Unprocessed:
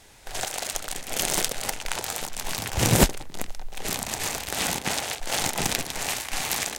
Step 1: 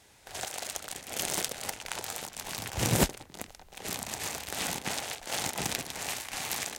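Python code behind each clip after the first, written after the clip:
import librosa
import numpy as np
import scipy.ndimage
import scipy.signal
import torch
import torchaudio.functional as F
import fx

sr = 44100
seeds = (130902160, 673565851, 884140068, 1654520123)

y = scipy.signal.sosfilt(scipy.signal.butter(2, 56.0, 'highpass', fs=sr, output='sos'), x)
y = F.gain(torch.from_numpy(y), -6.5).numpy()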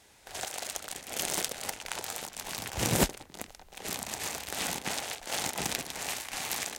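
y = fx.peak_eq(x, sr, hz=110.0, db=-4.0, octaves=0.98)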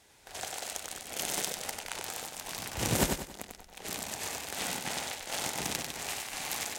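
y = fx.echo_feedback(x, sr, ms=95, feedback_pct=36, wet_db=-5.0)
y = F.gain(torch.from_numpy(y), -2.5).numpy()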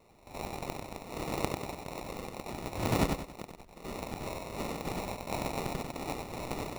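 y = fx.sample_hold(x, sr, seeds[0], rate_hz=1600.0, jitter_pct=0)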